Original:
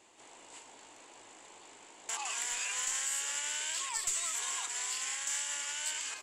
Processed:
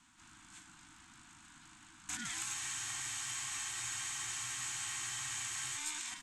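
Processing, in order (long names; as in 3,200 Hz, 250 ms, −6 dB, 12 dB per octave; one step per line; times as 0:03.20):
ring modulation 610 Hz
Chebyshev band-stop filter 330–710 Hz, order 4
frozen spectrum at 0:02.55, 3.23 s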